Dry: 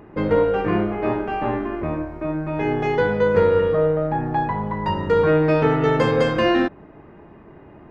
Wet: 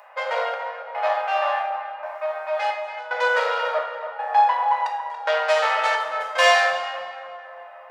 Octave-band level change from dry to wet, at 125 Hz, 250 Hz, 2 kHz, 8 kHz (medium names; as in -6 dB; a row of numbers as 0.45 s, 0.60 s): under -40 dB, under -40 dB, +5.5 dB, no reading